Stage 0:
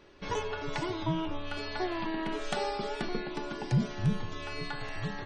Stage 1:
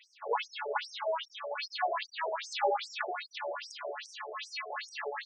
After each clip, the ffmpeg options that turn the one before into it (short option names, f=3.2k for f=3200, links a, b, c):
-filter_complex "[0:a]acrossover=split=4900[a][b];[b]acompressor=threshold=-55dB:ratio=4:attack=1:release=60[c];[a][c]amix=inputs=2:normalize=0,afftfilt=real='re*between(b*sr/1024,540*pow(7500/540,0.5+0.5*sin(2*PI*2.5*pts/sr))/1.41,540*pow(7500/540,0.5+0.5*sin(2*PI*2.5*pts/sr))*1.41)':imag='im*between(b*sr/1024,540*pow(7500/540,0.5+0.5*sin(2*PI*2.5*pts/sr))/1.41,540*pow(7500/540,0.5+0.5*sin(2*PI*2.5*pts/sr))*1.41)':win_size=1024:overlap=0.75,volume=9dB"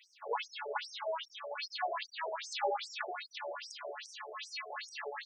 -af "highshelf=f=4.8k:g=6.5,volume=-4.5dB"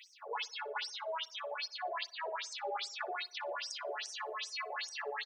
-filter_complex "[0:a]areverse,acompressor=threshold=-44dB:ratio=6,areverse,asplit=2[a][b];[b]adelay=60,lowpass=f=1.9k:p=1,volume=-20dB,asplit=2[c][d];[d]adelay=60,lowpass=f=1.9k:p=1,volume=0.54,asplit=2[e][f];[f]adelay=60,lowpass=f=1.9k:p=1,volume=0.54,asplit=2[g][h];[h]adelay=60,lowpass=f=1.9k:p=1,volume=0.54[i];[a][c][e][g][i]amix=inputs=5:normalize=0,volume=7dB"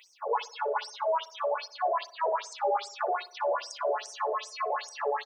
-filter_complex "[0:a]equalizer=f=250:t=o:w=1:g=-4,equalizer=f=500:t=o:w=1:g=10,equalizer=f=1k:t=o:w=1:g=9,equalizer=f=2k:t=o:w=1:g=-7,equalizer=f=4k:t=o:w=1:g=-7,asplit=2[a][b];[b]alimiter=level_in=5.5dB:limit=-24dB:level=0:latency=1:release=30,volume=-5.5dB,volume=-2.5dB[c];[a][c]amix=inputs=2:normalize=0"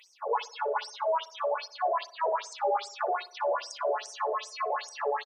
-af "aresample=32000,aresample=44100"